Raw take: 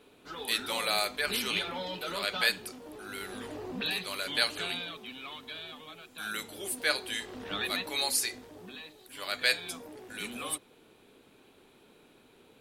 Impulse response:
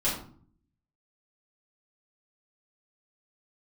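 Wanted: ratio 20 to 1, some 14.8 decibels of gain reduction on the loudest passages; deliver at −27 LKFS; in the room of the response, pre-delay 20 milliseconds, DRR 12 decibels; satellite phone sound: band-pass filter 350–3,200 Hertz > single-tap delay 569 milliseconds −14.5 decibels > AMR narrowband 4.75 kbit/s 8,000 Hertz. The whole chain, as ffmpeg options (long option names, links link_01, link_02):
-filter_complex "[0:a]acompressor=threshold=-36dB:ratio=20,asplit=2[link_01][link_02];[1:a]atrim=start_sample=2205,adelay=20[link_03];[link_02][link_03]afir=irnorm=-1:irlink=0,volume=-21dB[link_04];[link_01][link_04]amix=inputs=2:normalize=0,highpass=350,lowpass=3200,aecho=1:1:569:0.188,volume=21dB" -ar 8000 -c:a libopencore_amrnb -b:a 4750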